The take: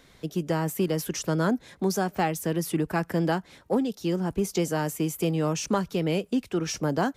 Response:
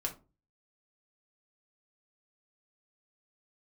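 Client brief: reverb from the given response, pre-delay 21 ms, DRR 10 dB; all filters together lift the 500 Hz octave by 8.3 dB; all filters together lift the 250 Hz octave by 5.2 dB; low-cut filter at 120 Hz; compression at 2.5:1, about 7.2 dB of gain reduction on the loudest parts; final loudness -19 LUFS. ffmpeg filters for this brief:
-filter_complex "[0:a]highpass=120,equalizer=f=250:t=o:g=4.5,equalizer=f=500:t=o:g=9,acompressor=threshold=-25dB:ratio=2.5,asplit=2[a][b];[1:a]atrim=start_sample=2205,adelay=21[c];[b][c]afir=irnorm=-1:irlink=0,volume=-11.5dB[d];[a][d]amix=inputs=2:normalize=0,volume=8.5dB"

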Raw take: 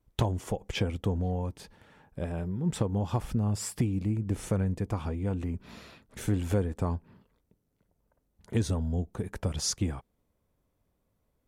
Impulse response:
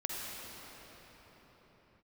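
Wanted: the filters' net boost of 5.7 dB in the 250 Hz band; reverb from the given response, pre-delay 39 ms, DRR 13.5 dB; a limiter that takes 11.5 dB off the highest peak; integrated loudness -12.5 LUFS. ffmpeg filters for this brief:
-filter_complex "[0:a]equalizer=f=250:t=o:g=7.5,alimiter=limit=-24dB:level=0:latency=1,asplit=2[a][b];[1:a]atrim=start_sample=2205,adelay=39[c];[b][c]afir=irnorm=-1:irlink=0,volume=-17.5dB[d];[a][d]amix=inputs=2:normalize=0,volume=21dB"

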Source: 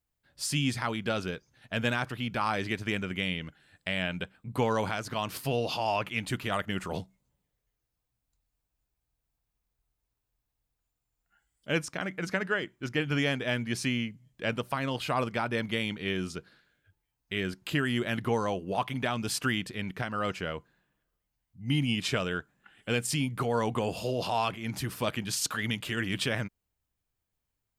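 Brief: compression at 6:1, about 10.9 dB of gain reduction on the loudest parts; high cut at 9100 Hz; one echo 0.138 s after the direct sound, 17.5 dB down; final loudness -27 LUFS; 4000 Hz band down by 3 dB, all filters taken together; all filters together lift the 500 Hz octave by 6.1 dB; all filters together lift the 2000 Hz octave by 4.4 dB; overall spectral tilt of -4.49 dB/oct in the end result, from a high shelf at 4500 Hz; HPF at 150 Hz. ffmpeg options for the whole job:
-af "highpass=150,lowpass=9.1k,equalizer=f=500:t=o:g=7,equalizer=f=2k:t=o:g=7.5,equalizer=f=4k:t=o:g=-6,highshelf=f=4.5k:g=-5,acompressor=threshold=-31dB:ratio=6,aecho=1:1:138:0.133,volume=9dB"

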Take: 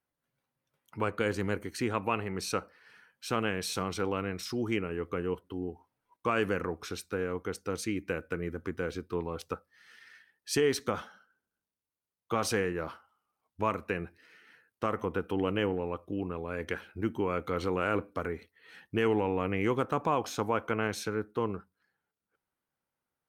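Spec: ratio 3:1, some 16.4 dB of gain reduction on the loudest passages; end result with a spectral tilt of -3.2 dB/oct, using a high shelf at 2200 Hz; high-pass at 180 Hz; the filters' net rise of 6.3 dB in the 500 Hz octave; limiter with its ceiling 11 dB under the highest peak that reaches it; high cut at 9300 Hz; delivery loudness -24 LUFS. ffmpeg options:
-af "highpass=180,lowpass=9.3k,equalizer=f=500:t=o:g=7,highshelf=f=2.2k:g=8.5,acompressor=threshold=-41dB:ratio=3,volume=20.5dB,alimiter=limit=-12.5dB:level=0:latency=1"

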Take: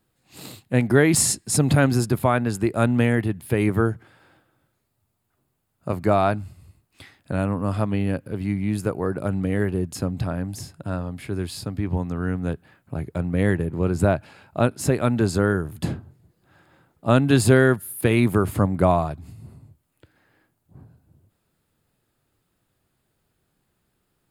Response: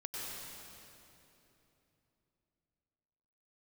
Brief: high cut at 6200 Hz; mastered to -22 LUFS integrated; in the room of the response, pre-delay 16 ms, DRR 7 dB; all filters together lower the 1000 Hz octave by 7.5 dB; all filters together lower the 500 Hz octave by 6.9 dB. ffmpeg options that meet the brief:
-filter_complex "[0:a]lowpass=6.2k,equalizer=f=500:t=o:g=-7,equalizer=f=1k:t=o:g=-8.5,asplit=2[a][b];[1:a]atrim=start_sample=2205,adelay=16[c];[b][c]afir=irnorm=-1:irlink=0,volume=-8dB[d];[a][d]amix=inputs=2:normalize=0,volume=2.5dB"

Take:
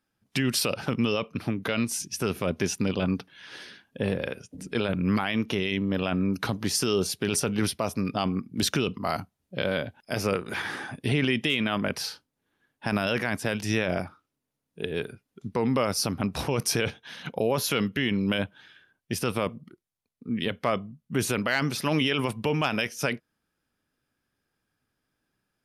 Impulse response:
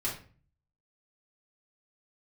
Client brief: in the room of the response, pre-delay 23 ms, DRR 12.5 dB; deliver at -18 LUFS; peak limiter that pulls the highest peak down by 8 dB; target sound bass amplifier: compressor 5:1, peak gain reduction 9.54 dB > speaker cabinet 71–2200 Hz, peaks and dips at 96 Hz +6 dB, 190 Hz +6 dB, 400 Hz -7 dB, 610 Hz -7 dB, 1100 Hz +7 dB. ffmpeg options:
-filter_complex "[0:a]alimiter=limit=-21.5dB:level=0:latency=1,asplit=2[a][b];[1:a]atrim=start_sample=2205,adelay=23[c];[b][c]afir=irnorm=-1:irlink=0,volume=-17.5dB[d];[a][d]amix=inputs=2:normalize=0,acompressor=threshold=-35dB:ratio=5,highpass=f=71:w=0.5412,highpass=f=71:w=1.3066,equalizer=f=96:t=q:w=4:g=6,equalizer=f=190:t=q:w=4:g=6,equalizer=f=400:t=q:w=4:g=-7,equalizer=f=610:t=q:w=4:g=-7,equalizer=f=1.1k:t=q:w=4:g=7,lowpass=f=2.2k:w=0.5412,lowpass=f=2.2k:w=1.3066,volume=21dB"

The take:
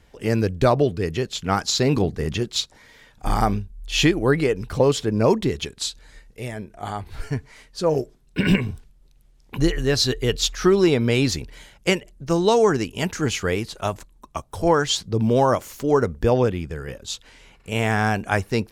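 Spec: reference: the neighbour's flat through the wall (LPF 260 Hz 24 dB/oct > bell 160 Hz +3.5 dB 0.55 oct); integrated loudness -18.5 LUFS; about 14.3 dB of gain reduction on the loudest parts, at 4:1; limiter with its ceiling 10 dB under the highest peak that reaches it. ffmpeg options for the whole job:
-af "acompressor=threshold=-30dB:ratio=4,alimiter=level_in=1.5dB:limit=-24dB:level=0:latency=1,volume=-1.5dB,lowpass=f=260:w=0.5412,lowpass=f=260:w=1.3066,equalizer=f=160:t=o:w=0.55:g=3.5,volume=22dB"

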